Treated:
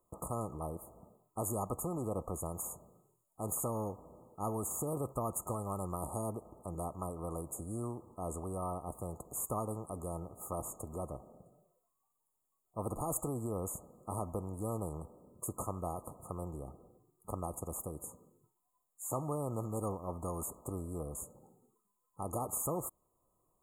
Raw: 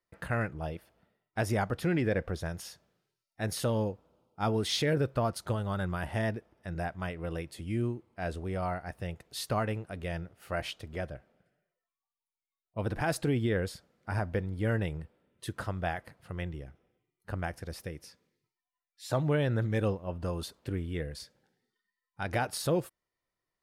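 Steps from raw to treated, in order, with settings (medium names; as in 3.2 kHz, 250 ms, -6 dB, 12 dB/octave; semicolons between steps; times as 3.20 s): brick-wall FIR band-stop 1.3–6.6 kHz; spectrum-flattening compressor 2:1; trim -3.5 dB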